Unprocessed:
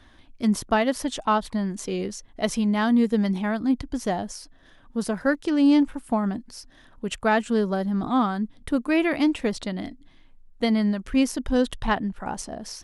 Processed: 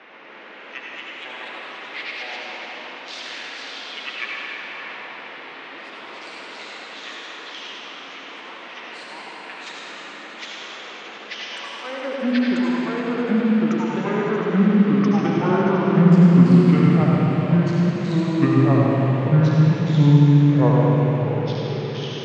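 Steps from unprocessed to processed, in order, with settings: treble ducked by the level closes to 1900 Hz, closed at -18 dBFS; low shelf 210 Hz -9 dB; transient shaper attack +4 dB, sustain -6 dB; high-pass sweep 4000 Hz -> 280 Hz, 8.44–9.24; band noise 400–4500 Hz -46 dBFS; darkening echo 80 ms, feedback 71%, low-pass 990 Hz, level -5 dB; echoes that change speed 0.18 s, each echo +2 st, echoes 3; reverb RT60 2.0 s, pre-delay 40 ms, DRR -3.5 dB; speed mistake 78 rpm record played at 45 rpm; gain -1.5 dB

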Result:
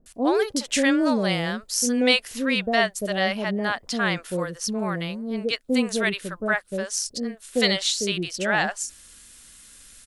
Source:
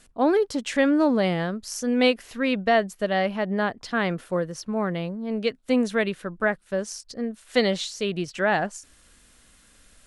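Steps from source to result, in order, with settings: high shelf 3100 Hz +12 dB; bands offset in time lows, highs 60 ms, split 610 Hz

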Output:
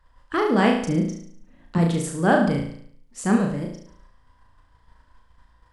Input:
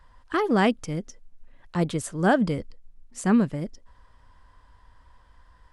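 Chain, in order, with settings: gate -51 dBFS, range -7 dB; 0.82–1.78 bell 240 Hz +13.5 dB 1.1 oct; flutter echo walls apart 6.1 m, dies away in 0.61 s

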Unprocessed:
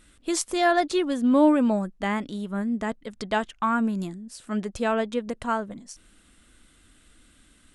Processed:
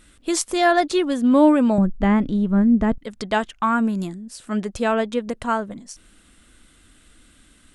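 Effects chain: 1.78–2.98 RIAA curve playback; gain +4 dB

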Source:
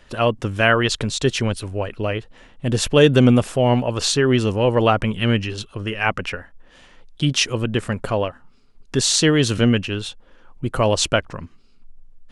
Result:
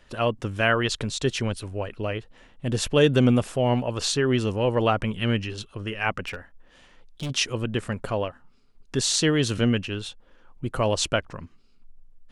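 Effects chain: 6.26–7.3 hard clip -21.5 dBFS, distortion -22 dB; gain -5.5 dB

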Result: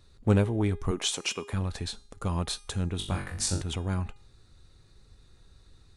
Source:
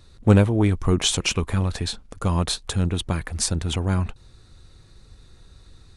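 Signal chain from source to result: 0.91–1.53 HPF 280 Hz 12 dB/oct; resonator 410 Hz, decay 0.54 s, mix 60%; 2.97–3.62 flutter echo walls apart 3.6 m, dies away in 0.39 s

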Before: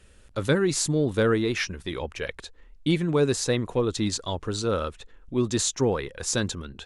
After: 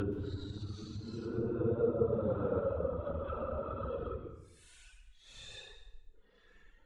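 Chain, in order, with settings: Paulstretch 11×, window 0.05 s, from 4.51; reverb removal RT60 1.2 s; treble ducked by the level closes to 850 Hz, closed at -27 dBFS; plate-style reverb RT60 0.82 s, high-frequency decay 0.85×, pre-delay 0.115 s, DRR 12.5 dB; gain -5.5 dB

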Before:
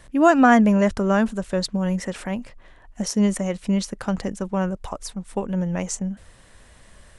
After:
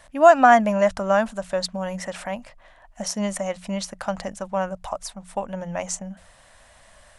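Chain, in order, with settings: resonant low shelf 510 Hz -6.5 dB, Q 3; notches 60/120/180 Hz

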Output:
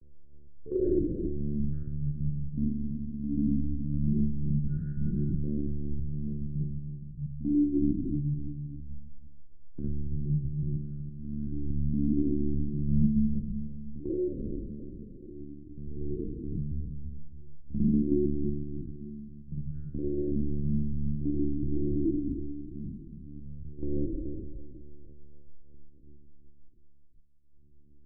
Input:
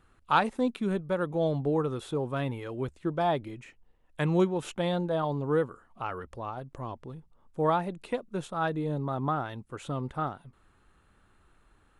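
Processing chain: spectral contrast raised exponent 1.6; tremolo triangle 0.58 Hz, depth 100%; in parallel at +0.5 dB: negative-ratio compressor -37 dBFS, ratio -0.5; on the sum: shoebox room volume 45 m³, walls mixed, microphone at 0.55 m; LFO low-pass square 0.5 Hz 680–1700 Hz; dynamic EQ 2500 Hz, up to +6 dB, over -41 dBFS, Q 0.89; on a send: feedback echo 0.13 s, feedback 30%, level -11 dB; on the sum: monotone LPC vocoder at 8 kHz 170 Hz; doubler 20 ms -13.5 dB; speed mistake 78 rpm record played at 33 rpm; elliptic band-stop 360–2000 Hz, stop band 60 dB; three-band squash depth 40%; gain -3.5 dB

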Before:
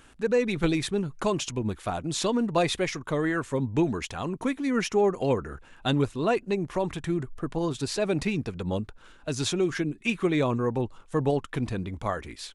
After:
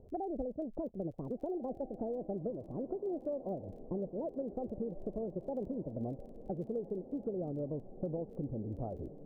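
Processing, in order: speed glide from 160% -> 111%; steep low-pass 660 Hz 36 dB/oct; compressor 6:1, threshold -37 dBFS, peak gain reduction 16 dB; on a send: diffused feedback echo 1.591 s, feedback 52%, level -14 dB; on the sum: crackle 19/s -57 dBFS; gain +1 dB

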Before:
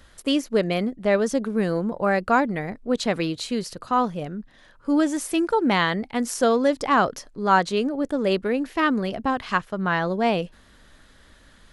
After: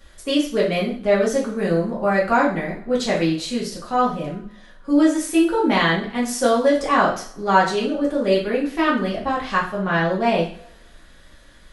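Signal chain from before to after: two-slope reverb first 0.45 s, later 1.7 s, from -28 dB, DRR -6 dB; gain -4 dB

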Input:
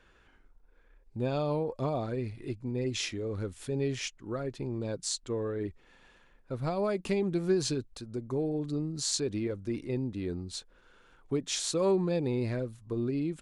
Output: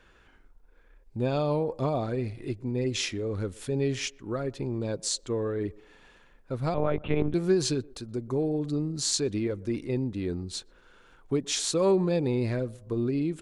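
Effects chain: narrowing echo 0.123 s, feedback 46%, band-pass 540 Hz, level -22 dB; 6.74–7.34 monotone LPC vocoder at 8 kHz 150 Hz; gain +3.5 dB

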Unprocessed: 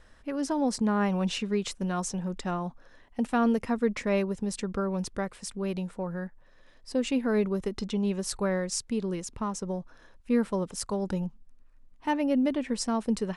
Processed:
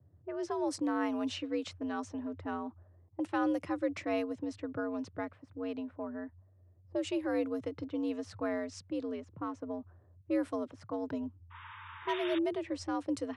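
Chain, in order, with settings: painted sound noise, 11.5–12.39, 780–3700 Hz -36 dBFS; low-pass opened by the level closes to 330 Hz, open at -23 dBFS; frequency shift +77 Hz; gain -6.5 dB

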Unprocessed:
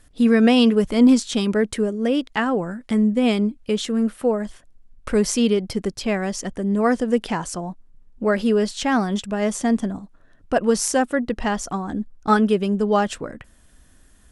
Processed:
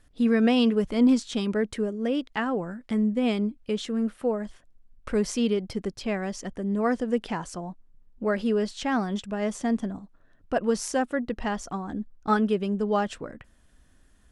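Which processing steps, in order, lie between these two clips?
high shelf 8800 Hz -11 dB; gain -6 dB

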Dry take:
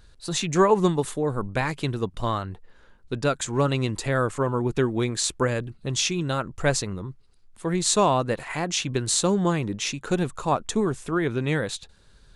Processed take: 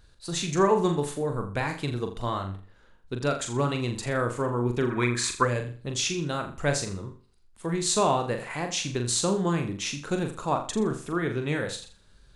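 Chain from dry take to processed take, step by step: flutter echo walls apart 7.1 m, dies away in 0.39 s; spectral gain 4.91–5.44, 940–2600 Hz +11 dB; gain -4 dB

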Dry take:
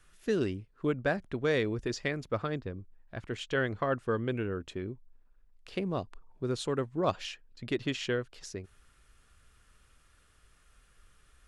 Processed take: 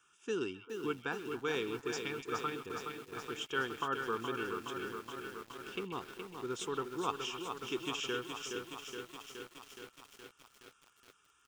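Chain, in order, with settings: HPF 300 Hz 12 dB/oct; fixed phaser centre 2900 Hz, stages 8; comb 2.2 ms, depth 36%; delay with a stepping band-pass 0.131 s, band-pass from 2900 Hz, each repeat -1.4 oct, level -10 dB; on a send at -23 dB: reverb RT60 0.20 s, pre-delay 3 ms; on the sum: lo-fi delay 0.42 s, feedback 80%, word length 9-bit, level -6 dB

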